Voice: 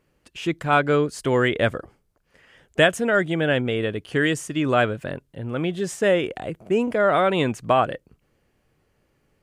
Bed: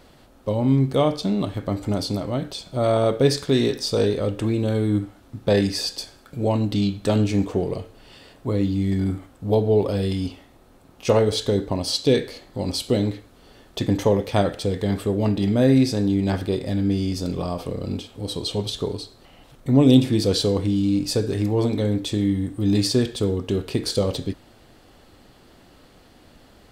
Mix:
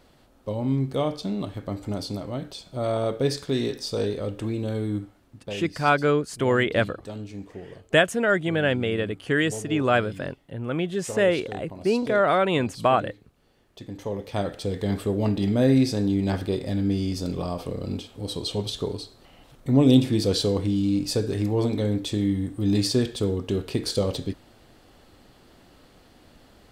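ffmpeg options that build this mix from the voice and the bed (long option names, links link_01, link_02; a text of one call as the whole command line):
ffmpeg -i stem1.wav -i stem2.wav -filter_complex "[0:a]adelay=5150,volume=-1.5dB[link_01];[1:a]volume=8dB,afade=type=out:start_time=4.84:duration=0.71:silence=0.298538,afade=type=in:start_time=13.93:duration=1:silence=0.199526[link_02];[link_01][link_02]amix=inputs=2:normalize=0" out.wav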